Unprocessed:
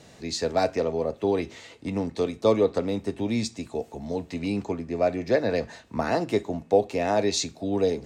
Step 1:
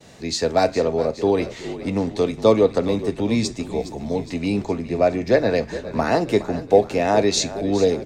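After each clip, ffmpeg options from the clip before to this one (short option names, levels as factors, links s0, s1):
-filter_complex "[0:a]agate=range=0.0224:threshold=0.00355:ratio=3:detection=peak,asplit=7[s0][s1][s2][s3][s4][s5][s6];[s1]adelay=414,afreqshift=-44,volume=0.2[s7];[s2]adelay=828,afreqshift=-88,volume=0.116[s8];[s3]adelay=1242,afreqshift=-132,volume=0.0668[s9];[s4]adelay=1656,afreqshift=-176,volume=0.0389[s10];[s5]adelay=2070,afreqshift=-220,volume=0.0226[s11];[s6]adelay=2484,afreqshift=-264,volume=0.013[s12];[s0][s7][s8][s9][s10][s11][s12]amix=inputs=7:normalize=0,volume=1.88"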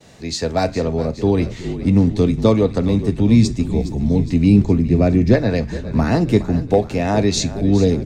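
-af "asubboost=boost=10.5:cutoff=230"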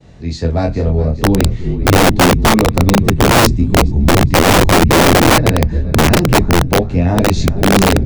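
-af "flanger=delay=22.5:depth=4.1:speed=0.43,aemphasis=mode=reproduction:type=bsi,aeval=exprs='(mod(2*val(0)+1,2)-1)/2':c=same,volume=1.33"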